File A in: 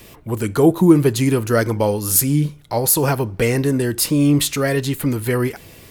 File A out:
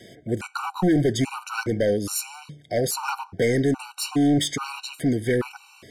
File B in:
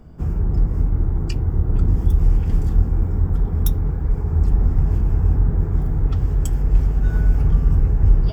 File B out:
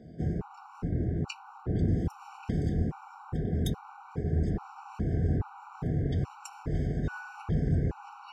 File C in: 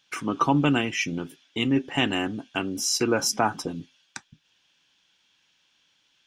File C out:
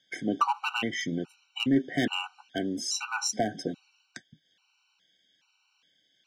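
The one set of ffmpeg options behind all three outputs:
-af "highpass=140,lowpass=6.8k,asoftclip=type=hard:threshold=-16dB,afftfilt=real='re*gt(sin(2*PI*1.2*pts/sr)*(1-2*mod(floor(b*sr/1024/760),2)),0)':imag='im*gt(sin(2*PI*1.2*pts/sr)*(1-2*mod(floor(b*sr/1024/760),2)),0)':win_size=1024:overlap=0.75"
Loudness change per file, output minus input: -7.0, -12.0, -4.5 LU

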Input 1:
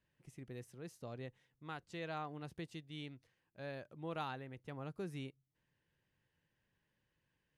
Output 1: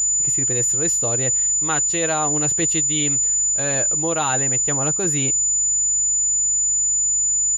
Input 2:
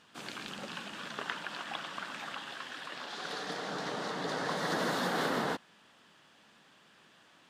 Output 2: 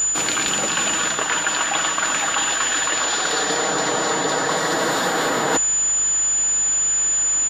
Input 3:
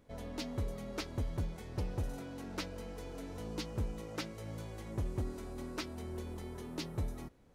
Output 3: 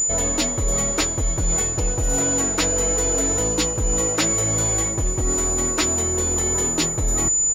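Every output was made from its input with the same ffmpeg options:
-af "aeval=exprs='val(0)+0.000355*(sin(2*PI*50*n/s)+sin(2*PI*2*50*n/s)/2+sin(2*PI*3*50*n/s)/3+sin(2*PI*4*50*n/s)/4+sin(2*PI*5*50*n/s)/5)':c=same,equalizer=f=180:t=o:w=0.81:g=-8,apsyclip=25.5dB,aeval=exprs='val(0)+0.126*sin(2*PI*7000*n/s)':c=same,areverse,acompressor=threshold=-18dB:ratio=12,areverse,aecho=1:1:6.3:0.32"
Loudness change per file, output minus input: +30.5, +18.5, +22.0 LU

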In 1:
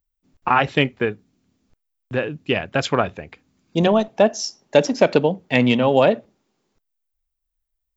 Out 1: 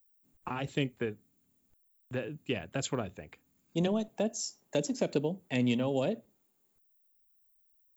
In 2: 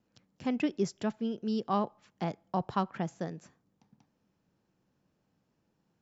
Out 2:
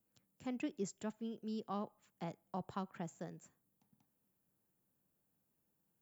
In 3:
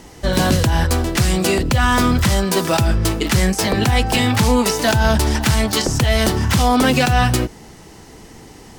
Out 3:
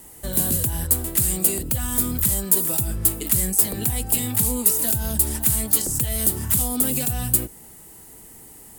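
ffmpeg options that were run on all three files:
-filter_complex "[0:a]acrossover=split=470|3300[a][b][c];[b]acompressor=threshold=-29dB:ratio=6[d];[c]aexciter=amount=13.9:drive=3.5:freq=8k[e];[a][d][e]amix=inputs=3:normalize=0,volume=-10.5dB"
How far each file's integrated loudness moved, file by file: -14.0, -11.0, -3.0 LU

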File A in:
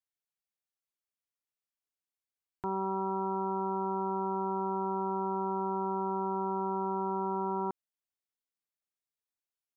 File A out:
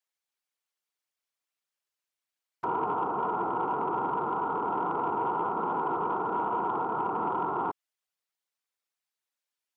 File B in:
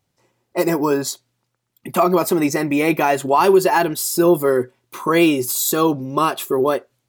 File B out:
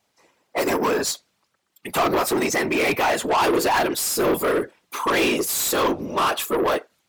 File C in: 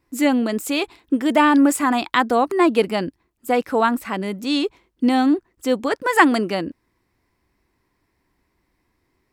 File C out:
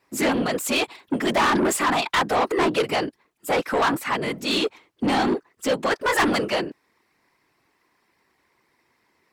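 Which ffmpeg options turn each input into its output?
-filter_complex "[0:a]afftfilt=real='hypot(re,im)*cos(2*PI*random(0))':imag='hypot(re,im)*sin(2*PI*random(1))':win_size=512:overlap=0.75,asplit=2[a][b];[b]highpass=f=720:p=1,volume=26dB,asoftclip=type=tanh:threshold=-5dB[c];[a][c]amix=inputs=2:normalize=0,lowpass=f=6.8k:p=1,volume=-6dB,volume=-7dB"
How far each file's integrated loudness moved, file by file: +3.0, -3.5, -3.5 LU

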